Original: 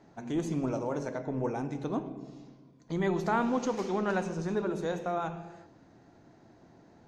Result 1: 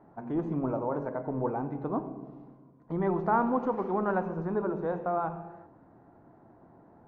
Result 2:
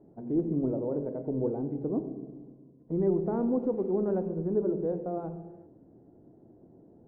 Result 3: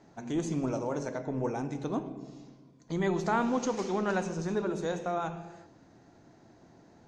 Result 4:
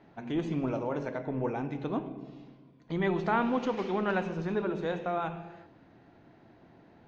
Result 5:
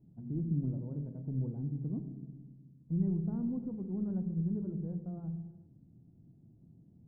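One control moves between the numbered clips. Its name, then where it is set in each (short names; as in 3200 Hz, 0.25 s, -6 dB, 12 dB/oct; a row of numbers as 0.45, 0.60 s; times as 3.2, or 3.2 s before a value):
synth low-pass, frequency: 1100, 440, 7500, 3000, 160 Hz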